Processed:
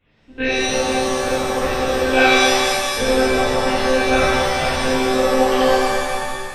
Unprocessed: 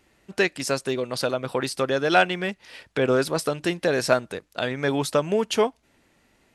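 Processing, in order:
one-pitch LPC vocoder at 8 kHz 260 Hz
reverb with rising layers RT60 1.9 s, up +7 semitones, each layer −2 dB, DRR −11.5 dB
level −7 dB

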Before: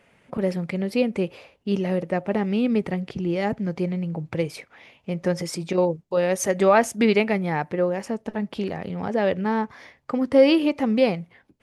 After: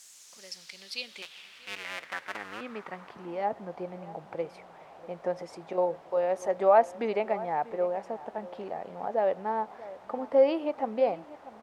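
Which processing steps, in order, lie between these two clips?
0:01.22–0:02.61: sub-harmonics by changed cycles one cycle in 2, muted
high-shelf EQ 3,900 Hz +9 dB
background noise pink −41 dBFS
band-pass filter sweep 7,300 Hz → 730 Hz, 0:00.10–0:03.55
slap from a distant wall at 110 metres, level −17 dB

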